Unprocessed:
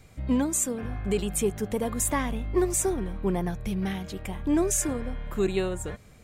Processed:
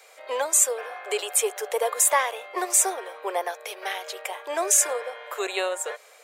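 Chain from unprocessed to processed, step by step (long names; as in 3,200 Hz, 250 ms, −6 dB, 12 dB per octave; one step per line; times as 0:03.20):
Butterworth high-pass 470 Hz 48 dB per octave
level +8 dB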